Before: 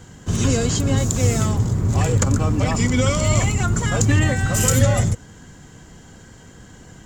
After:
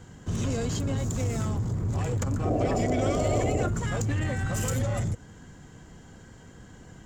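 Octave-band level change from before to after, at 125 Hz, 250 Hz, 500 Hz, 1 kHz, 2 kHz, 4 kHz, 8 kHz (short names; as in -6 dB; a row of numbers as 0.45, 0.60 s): -9.5, -8.0, -5.0, -6.0, -11.0, -12.5, -14.5 dB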